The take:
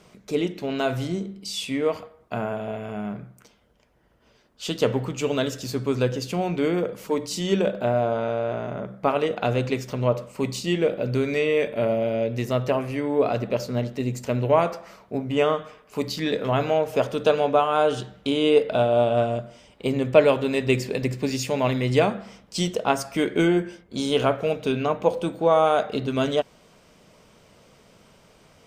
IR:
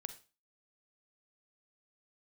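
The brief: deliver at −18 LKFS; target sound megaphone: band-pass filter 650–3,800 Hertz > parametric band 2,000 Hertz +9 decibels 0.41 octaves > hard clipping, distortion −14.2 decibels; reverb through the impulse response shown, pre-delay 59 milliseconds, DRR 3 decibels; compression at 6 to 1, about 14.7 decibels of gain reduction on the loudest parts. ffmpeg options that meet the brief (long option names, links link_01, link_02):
-filter_complex "[0:a]acompressor=threshold=-26dB:ratio=6,asplit=2[link_01][link_02];[1:a]atrim=start_sample=2205,adelay=59[link_03];[link_02][link_03]afir=irnorm=-1:irlink=0,volume=0dB[link_04];[link_01][link_04]amix=inputs=2:normalize=0,highpass=650,lowpass=3800,equalizer=frequency=2000:width_type=o:width=0.41:gain=9,asoftclip=type=hard:threshold=-27dB,volume=16.5dB"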